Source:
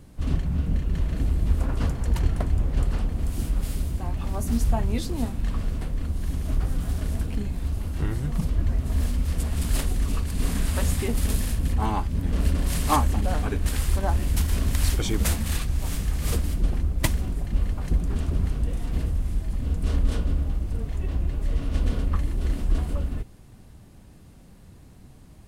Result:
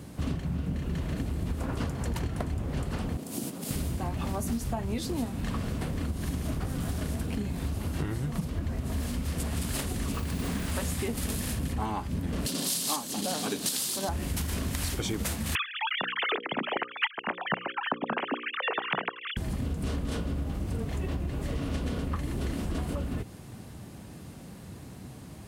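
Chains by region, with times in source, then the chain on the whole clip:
3.17–3.71 s: peaking EQ 1.7 kHz -9 dB 2.2 oct + compression 2.5:1, threshold -25 dBFS + Bessel high-pass 240 Hz, order 4
10.13–10.72 s: treble shelf 5.5 kHz -8 dB + modulation noise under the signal 26 dB
12.46–14.09 s: high-pass 170 Hz 24 dB/octave + resonant high shelf 2.9 kHz +11 dB, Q 1.5
15.55–19.37 s: formants replaced by sine waves + tilt EQ +3.5 dB/octave + hum notches 60/120/180/240/300/360/420/480/540 Hz
whole clip: high-pass 100 Hz 12 dB/octave; compression 10:1, threshold -35 dBFS; trim +7.5 dB

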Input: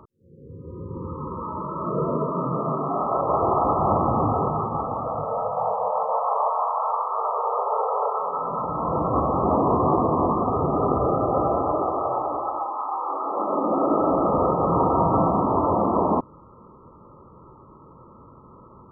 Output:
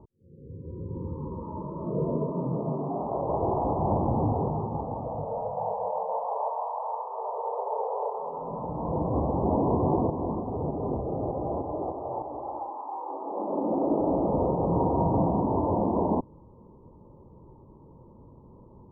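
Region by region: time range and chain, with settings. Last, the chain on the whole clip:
10.10–12.49 s: tremolo saw up 3.3 Hz, depth 50% + transformer saturation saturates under 710 Hz
whole clip: elliptic low-pass 950 Hz, stop band 40 dB; tilt EQ -2 dB/octave; trim -6 dB

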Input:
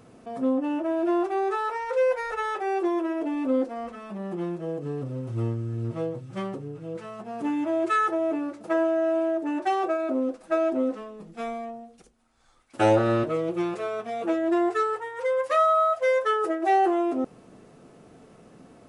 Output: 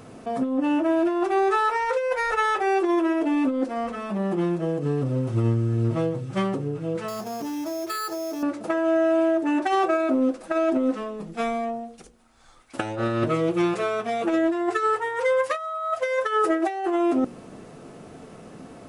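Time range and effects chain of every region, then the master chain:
7.08–8.43 s: compression 12:1, threshold -35 dBFS + sample-rate reducer 5.9 kHz
whole clip: hum notches 60/120/180/240/300/360/420/480/540 Hz; dynamic bell 570 Hz, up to -5 dB, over -34 dBFS, Q 0.81; compressor with a negative ratio -28 dBFS, ratio -0.5; trim +7 dB

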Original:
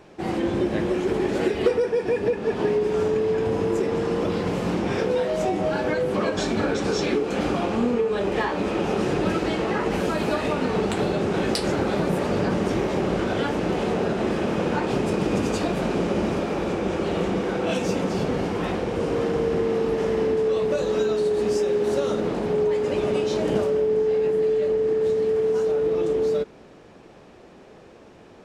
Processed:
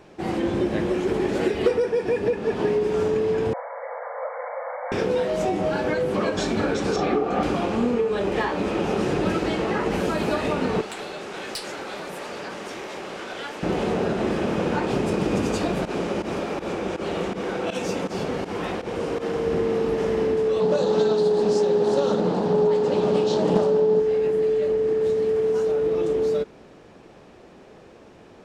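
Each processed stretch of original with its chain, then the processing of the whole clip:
3.53–4.92 s: brick-wall FIR band-pass 490–2300 Hz + tilt EQ -2 dB/octave
6.96–7.43 s: low-pass 2.1 kHz 6 dB/octave + small resonant body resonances 750/1200 Hz, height 15 dB
10.81–13.63 s: high-pass 1.3 kHz 6 dB/octave + valve stage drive 23 dB, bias 0.3
15.85–19.46 s: bass shelf 290 Hz -6.5 dB + volume shaper 81 bpm, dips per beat 2, -16 dB, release 93 ms
20.60–24.00 s: cabinet simulation 120–8700 Hz, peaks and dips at 180 Hz +9 dB, 480 Hz +4 dB, 860 Hz +8 dB, 2.2 kHz -9 dB, 4.2 kHz +6 dB + loudspeaker Doppler distortion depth 0.3 ms
whole clip: none

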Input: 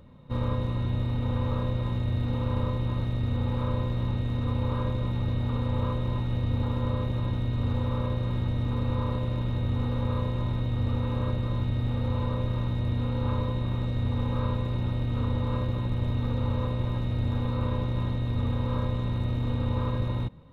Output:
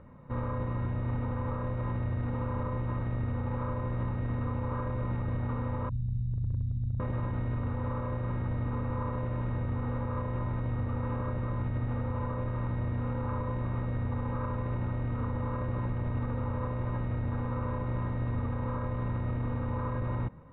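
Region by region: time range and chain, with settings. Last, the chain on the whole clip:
5.89–7.00 s: inverse Chebyshev band-stop 450–1700 Hz, stop band 60 dB + distance through air 180 m + hard clipper -20.5 dBFS
whole clip: low-pass 1.9 kHz 24 dB/octave; tilt shelf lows -4 dB, about 870 Hz; peak limiter -27.5 dBFS; trim +3 dB

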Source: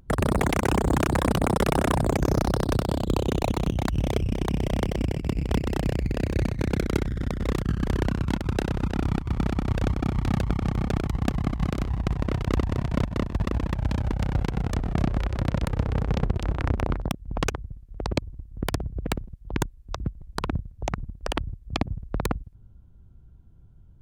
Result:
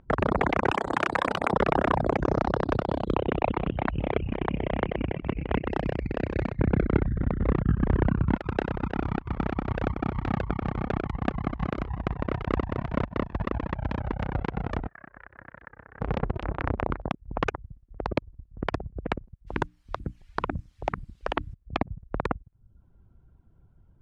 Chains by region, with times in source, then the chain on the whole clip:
0.71–1.53 s: tilt EQ +3 dB/octave + de-hum 73.03 Hz, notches 13
3.14–5.71 s: resonant high shelf 4 kHz -13.5 dB, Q 1.5 + delay 456 ms -21 dB
6.59–8.36 s: tone controls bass +8 dB, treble -15 dB + tape noise reduction on one side only decoder only
14.88–16.01 s: band-pass filter 1.7 kHz, Q 5.6 + tilt EQ -4.5 dB/octave
19.46–21.53 s: hum notches 60/120/180/240/300 Hz + added noise blue -52 dBFS
whole clip: low-pass 2 kHz 12 dB/octave; reverb removal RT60 0.53 s; bass shelf 300 Hz -9.5 dB; trim +4 dB

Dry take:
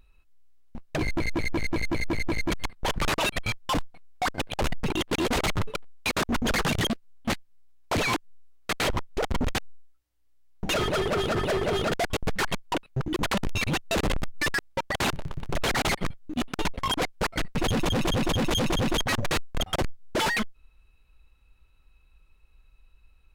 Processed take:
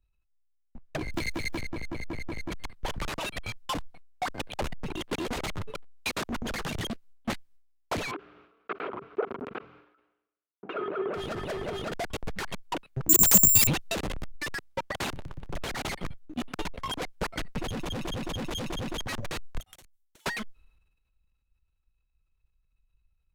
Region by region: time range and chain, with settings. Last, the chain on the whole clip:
1.14–1.61 s: block-companded coder 7-bit + treble shelf 2 kHz +8.5 dB + three bands compressed up and down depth 100%
8.11–11.14 s: cabinet simulation 310–2300 Hz, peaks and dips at 400 Hz +7 dB, 570 Hz -4 dB, 850 Hz -6 dB, 1.3 kHz +5 dB, 1.9 kHz -10 dB + decay stretcher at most 65 dB/s
13.09–13.67 s: peaking EQ 130 Hz +7 dB 2.6 oct + careless resampling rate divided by 6×, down none, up zero stuff + three bands compressed up and down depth 40%
19.59–20.26 s: pre-emphasis filter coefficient 0.9 + band-stop 4.9 kHz, Q 6.4 + compression 16:1, threshold -43 dBFS
whole clip: transient shaper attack +6 dB, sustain +10 dB; three bands expanded up and down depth 40%; trim -9 dB

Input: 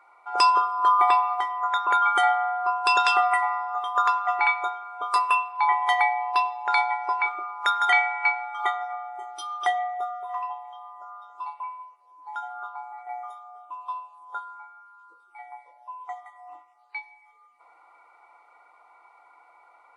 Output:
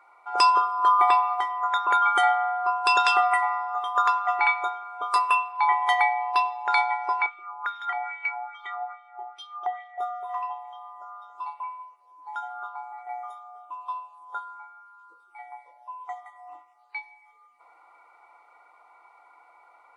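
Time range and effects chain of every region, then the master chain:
7.26–9.98 s: peaking EQ 360 Hz +9.5 dB 0.72 oct + compression 2.5:1, threshold -22 dBFS + wah-wah 2.4 Hz 750–3300 Hz, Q 2.5
whole clip: none

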